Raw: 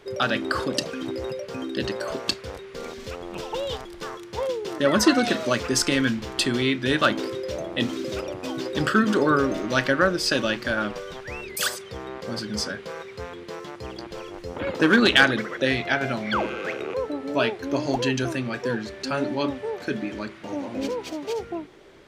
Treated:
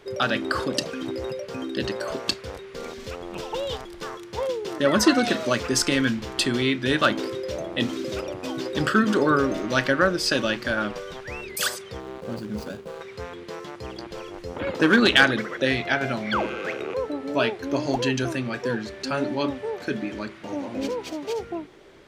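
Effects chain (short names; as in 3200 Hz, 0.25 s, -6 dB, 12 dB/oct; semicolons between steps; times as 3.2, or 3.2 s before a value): 12–13.01 median filter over 25 samples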